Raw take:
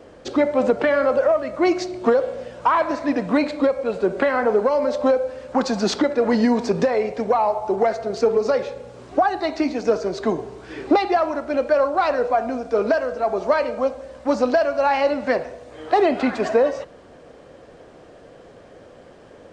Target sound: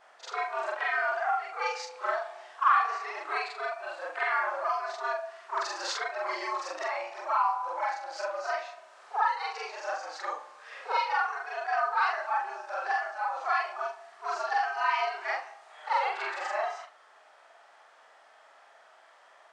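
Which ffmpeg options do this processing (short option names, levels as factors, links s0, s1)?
-af "afftfilt=real='re':imag='-im':win_size=4096:overlap=0.75,afreqshift=140,highpass=f=1200:t=q:w=1.7,volume=0.708"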